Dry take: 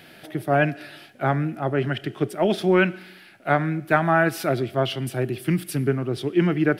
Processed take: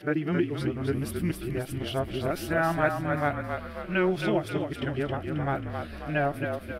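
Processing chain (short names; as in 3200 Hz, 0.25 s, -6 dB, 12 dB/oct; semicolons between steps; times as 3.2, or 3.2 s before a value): whole clip reversed; frequency-shifting echo 0.269 s, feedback 52%, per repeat -38 Hz, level -5.5 dB; gain -7 dB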